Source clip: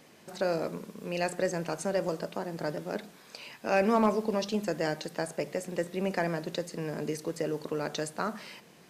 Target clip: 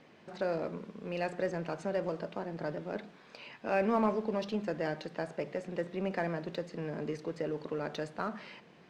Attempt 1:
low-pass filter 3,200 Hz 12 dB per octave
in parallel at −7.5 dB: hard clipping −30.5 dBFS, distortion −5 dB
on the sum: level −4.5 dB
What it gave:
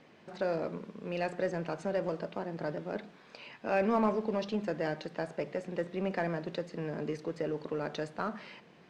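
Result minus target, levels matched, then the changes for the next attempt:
hard clipping: distortion −4 dB
change: hard clipping −38 dBFS, distortion −2 dB

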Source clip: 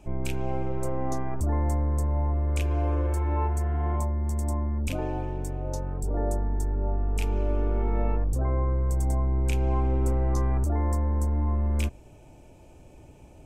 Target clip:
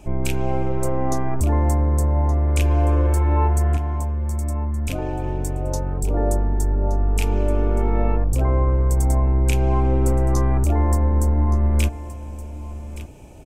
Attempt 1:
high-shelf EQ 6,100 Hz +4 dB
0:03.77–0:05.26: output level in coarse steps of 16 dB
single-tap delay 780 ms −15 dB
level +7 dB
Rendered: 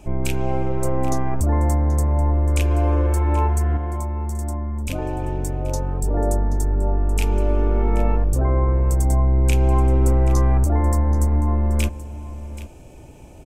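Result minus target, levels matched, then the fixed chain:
echo 391 ms early
high-shelf EQ 6,100 Hz +4 dB
0:03.77–0:05.26: output level in coarse steps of 16 dB
single-tap delay 1,171 ms −15 dB
level +7 dB

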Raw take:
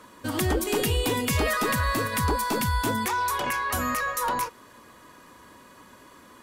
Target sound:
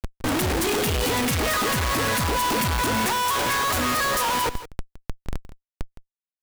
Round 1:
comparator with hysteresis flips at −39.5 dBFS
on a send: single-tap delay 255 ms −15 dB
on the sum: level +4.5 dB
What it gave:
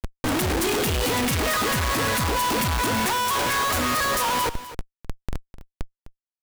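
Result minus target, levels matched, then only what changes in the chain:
echo 91 ms late
change: single-tap delay 164 ms −15 dB

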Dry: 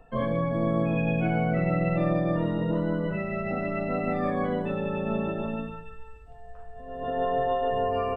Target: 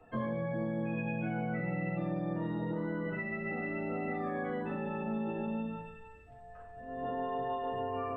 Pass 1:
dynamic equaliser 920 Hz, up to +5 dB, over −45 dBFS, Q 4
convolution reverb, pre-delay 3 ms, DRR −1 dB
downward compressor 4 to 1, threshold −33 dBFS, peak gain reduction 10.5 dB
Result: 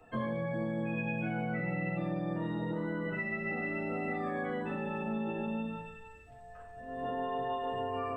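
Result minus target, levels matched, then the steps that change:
4,000 Hz band +4.5 dB
add after downward compressor: high-shelf EQ 3,200 Hz −10.5 dB

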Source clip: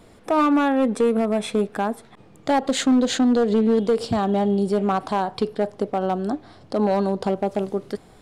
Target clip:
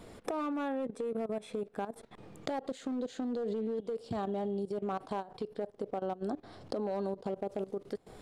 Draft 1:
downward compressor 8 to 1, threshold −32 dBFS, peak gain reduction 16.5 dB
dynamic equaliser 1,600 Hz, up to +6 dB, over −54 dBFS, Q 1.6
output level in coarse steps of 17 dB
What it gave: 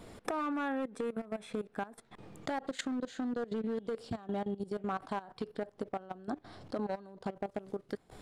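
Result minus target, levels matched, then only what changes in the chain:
2,000 Hz band +7.0 dB
change: dynamic equaliser 470 Hz, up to +6 dB, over −54 dBFS, Q 1.6

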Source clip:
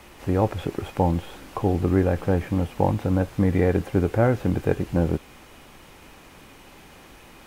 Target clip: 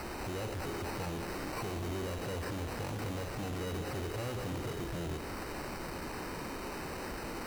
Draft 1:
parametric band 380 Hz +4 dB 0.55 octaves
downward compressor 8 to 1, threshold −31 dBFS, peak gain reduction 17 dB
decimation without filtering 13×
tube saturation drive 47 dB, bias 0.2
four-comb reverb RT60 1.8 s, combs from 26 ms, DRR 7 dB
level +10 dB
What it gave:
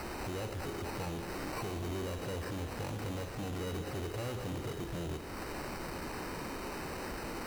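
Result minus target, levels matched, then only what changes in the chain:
downward compressor: peak gain reduction +6 dB
change: downward compressor 8 to 1, threshold −24 dBFS, peak gain reduction 11 dB

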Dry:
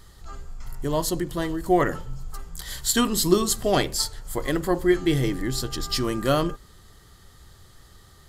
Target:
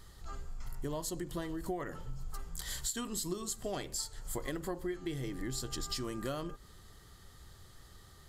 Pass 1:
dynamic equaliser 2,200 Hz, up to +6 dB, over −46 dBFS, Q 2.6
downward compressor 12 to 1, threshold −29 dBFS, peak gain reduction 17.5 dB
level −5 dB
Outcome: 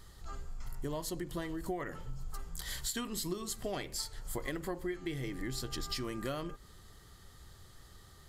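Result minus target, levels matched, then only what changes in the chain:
2,000 Hz band +3.0 dB
change: dynamic equaliser 7,500 Hz, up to +6 dB, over −46 dBFS, Q 2.6

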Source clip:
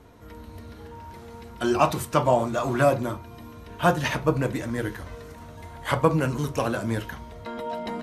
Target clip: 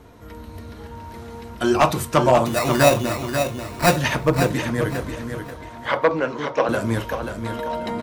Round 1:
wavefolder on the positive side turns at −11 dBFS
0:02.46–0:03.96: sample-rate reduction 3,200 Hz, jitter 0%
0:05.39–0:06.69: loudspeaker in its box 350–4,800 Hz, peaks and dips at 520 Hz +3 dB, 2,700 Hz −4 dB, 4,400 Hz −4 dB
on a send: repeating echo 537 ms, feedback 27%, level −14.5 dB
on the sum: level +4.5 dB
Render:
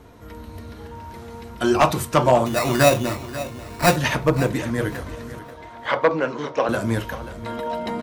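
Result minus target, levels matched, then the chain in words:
echo-to-direct −7.5 dB
wavefolder on the positive side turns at −11 dBFS
0:02.46–0:03.96: sample-rate reduction 3,200 Hz, jitter 0%
0:05.39–0:06.69: loudspeaker in its box 350–4,800 Hz, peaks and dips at 520 Hz +3 dB, 2,700 Hz −4 dB, 4,400 Hz −4 dB
on a send: repeating echo 537 ms, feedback 27%, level −7 dB
on the sum: level +4.5 dB

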